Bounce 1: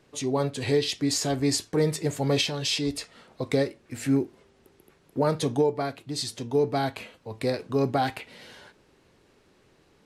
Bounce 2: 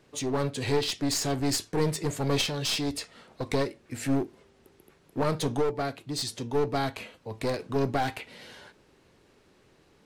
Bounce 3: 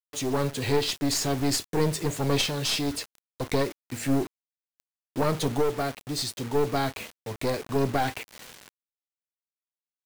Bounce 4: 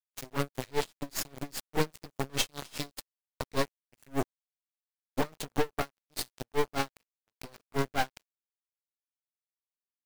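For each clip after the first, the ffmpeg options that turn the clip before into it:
-af "aeval=exprs='clip(val(0),-1,0.0376)':c=same"
-af "acrusher=bits=6:mix=0:aa=0.000001,volume=2dB"
-af "acrusher=bits=3:mix=0:aa=0.5,aeval=exprs='val(0)*pow(10,-32*(0.5-0.5*cos(2*PI*5*n/s))/20)':c=same"

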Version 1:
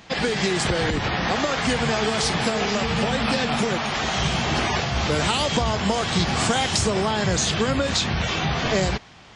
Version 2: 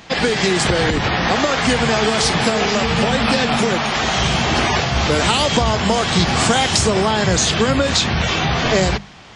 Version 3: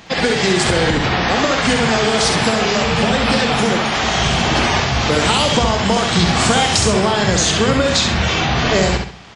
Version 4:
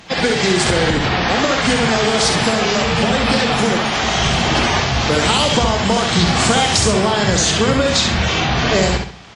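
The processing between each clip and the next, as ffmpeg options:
-af "bandreject=f=50:t=h:w=6,bandreject=f=100:t=h:w=6,bandreject=f=150:t=h:w=6,bandreject=f=200:t=h:w=6,volume=6dB"
-af "aecho=1:1:67|134|201|268:0.562|0.186|0.0612|0.0202"
-ar 48000 -c:a libvorbis -b:a 48k

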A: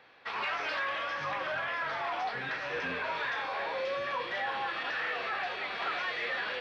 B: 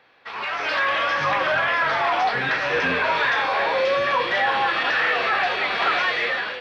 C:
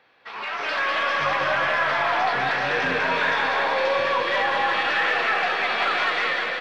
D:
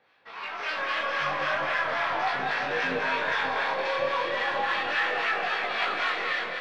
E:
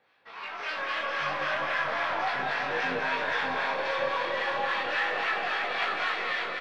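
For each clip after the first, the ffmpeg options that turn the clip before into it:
-af "dynaudnorm=f=260:g=5:m=11.5dB,volume=1.5dB"
-af "aeval=exprs='0.282*(cos(1*acos(clip(val(0)/0.282,-1,1)))-cos(1*PI/2))+0.00501*(cos(5*acos(clip(val(0)/0.282,-1,1)))-cos(5*PI/2))+0.00282*(cos(6*acos(clip(val(0)/0.282,-1,1)))-cos(6*PI/2))':c=same,bandreject=f=60:t=h:w=6,bandreject=f=120:t=h:w=6,aecho=1:1:200|380|542|687.8|819:0.631|0.398|0.251|0.158|0.1,volume=-3.5dB"
-filter_complex "[0:a]flanger=delay=18.5:depth=8:speed=0.36,acrossover=split=890[a][b];[a]aeval=exprs='val(0)*(1-0.5/2+0.5/2*cos(2*PI*3.7*n/s))':c=same[c];[b]aeval=exprs='val(0)*(1-0.5/2-0.5/2*cos(2*PI*3.7*n/s))':c=same[d];[c][d]amix=inputs=2:normalize=0"
-af "aecho=1:1:589:0.447,volume=-2.5dB"

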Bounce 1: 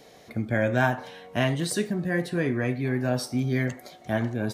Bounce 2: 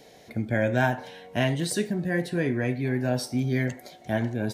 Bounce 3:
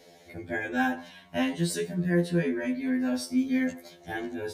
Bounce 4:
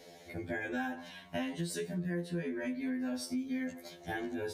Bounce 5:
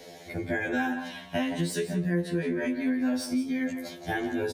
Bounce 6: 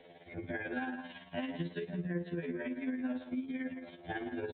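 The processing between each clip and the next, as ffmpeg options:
-af "equalizer=f=1.2k:t=o:w=0.22:g=-12"
-af "afftfilt=real='re*2*eq(mod(b,4),0)':imag='im*2*eq(mod(b,4),0)':win_size=2048:overlap=0.75"
-af "acompressor=threshold=-34dB:ratio=5"
-filter_complex "[0:a]acrossover=split=280|2500[a][b][c];[c]asoftclip=type=tanh:threshold=-38.5dB[d];[a][b][d]amix=inputs=3:normalize=0,asplit=2[e][f];[f]adelay=169.1,volume=-10dB,highshelf=f=4k:g=-3.8[g];[e][g]amix=inputs=2:normalize=0,volume=7.5dB"
-af "tremolo=f=18:d=0.48,aresample=8000,aresample=44100,volume=-7dB"

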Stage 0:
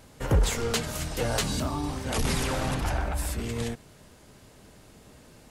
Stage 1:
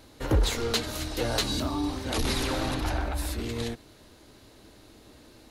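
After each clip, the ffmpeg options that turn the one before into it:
-af "equalizer=f=160:t=o:w=0.33:g=-12,equalizer=f=315:t=o:w=0.33:g=8,equalizer=f=4k:t=o:w=0.33:g=8,equalizer=f=8k:t=o:w=0.33:g=-5,volume=-1dB"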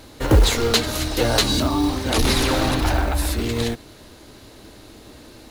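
-af "acrusher=bits=6:mode=log:mix=0:aa=0.000001,volume=9dB"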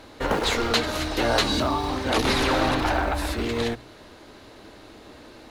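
-filter_complex "[0:a]asplit=2[a][b];[b]highpass=f=720:p=1,volume=7dB,asoftclip=type=tanh:threshold=-4dB[c];[a][c]amix=inputs=2:normalize=0,lowpass=f=1.8k:p=1,volume=-6dB,afftfilt=real='re*lt(hypot(re,im),0.708)':imag='im*lt(hypot(re,im),0.708)':win_size=1024:overlap=0.75,bandreject=f=60:t=h:w=6,bandreject=f=120:t=h:w=6"

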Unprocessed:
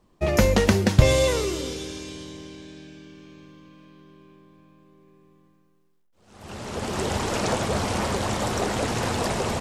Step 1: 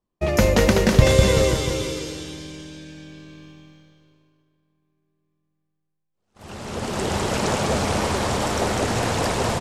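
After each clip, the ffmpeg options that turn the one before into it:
-filter_complex "[0:a]agate=range=-21dB:threshold=-47dB:ratio=16:detection=peak,asplit=2[a][b];[b]aecho=0:1:200|380|542|687.8|819:0.631|0.398|0.251|0.158|0.1[c];[a][c]amix=inputs=2:normalize=0,volume=1dB"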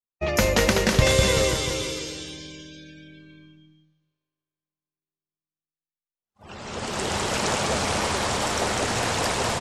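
-af "tiltshelf=f=780:g=-4,afftdn=nr=21:nf=-43,volume=-2dB"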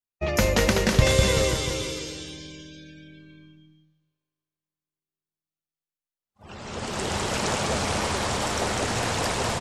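-af "lowshelf=f=220:g=3.5,volume=-2dB"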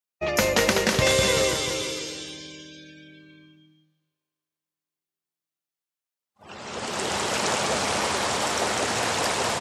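-af "highpass=f=330:p=1,volume=2.5dB"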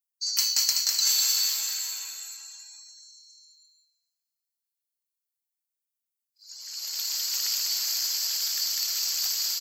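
-af "afftfilt=real='real(if(lt(b,736),b+184*(1-2*mod(floor(b/184),2)),b),0)':imag='imag(if(lt(b,736),b+184*(1-2*mod(floor(b/184),2)),b),0)':win_size=2048:overlap=0.75,aderivative"

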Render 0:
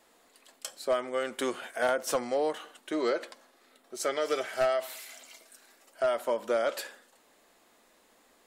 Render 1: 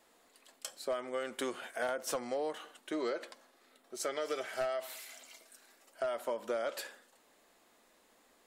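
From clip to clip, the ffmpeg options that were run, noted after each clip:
-af "acompressor=threshold=-29dB:ratio=3,volume=-3.5dB"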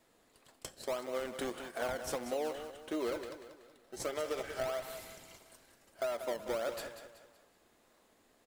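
-filter_complex "[0:a]asplit=2[a][b];[b]acrusher=samples=26:mix=1:aa=0.000001:lfo=1:lforange=26:lforate=1.6,volume=-4dB[c];[a][c]amix=inputs=2:normalize=0,aecho=1:1:188|376|564|752:0.316|0.13|0.0532|0.0218,volume=-4dB"

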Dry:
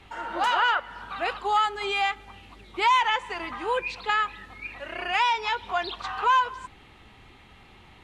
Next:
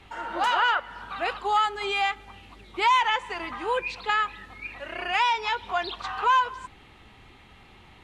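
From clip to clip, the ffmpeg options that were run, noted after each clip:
-af anull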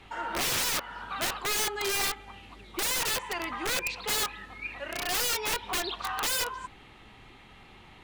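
-af "equalizer=f=75:w=3.5:g=-7.5,aeval=exprs='(mod(15*val(0)+1,2)-1)/15':c=same"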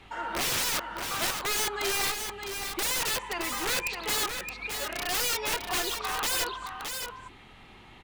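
-af "aecho=1:1:618:0.473"

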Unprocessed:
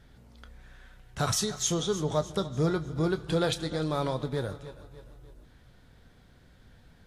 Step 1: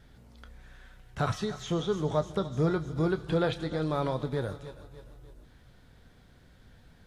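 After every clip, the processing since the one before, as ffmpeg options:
-filter_complex "[0:a]acrossover=split=3200[a][b];[b]acompressor=threshold=-53dB:ratio=4:attack=1:release=60[c];[a][c]amix=inputs=2:normalize=0"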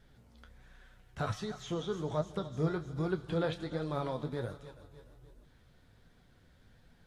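-af "flanger=delay=3.9:depth=9.9:regen=54:speed=1.3:shape=triangular,volume=-1.5dB"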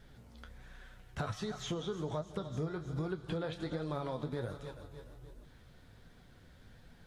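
-af "acompressor=threshold=-38dB:ratio=10,volume=4.5dB"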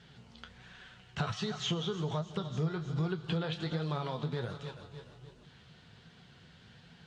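-af "highpass=110,equalizer=f=160:t=q:w=4:g=5,equalizer=f=290:t=q:w=4:g=-8,equalizer=f=560:t=q:w=4:g=-6,equalizer=f=2.9k:t=q:w=4:g=9,equalizer=f=4.3k:t=q:w=4:g=4,lowpass=f=7.6k:w=0.5412,lowpass=f=7.6k:w=1.3066,volume=3.5dB"

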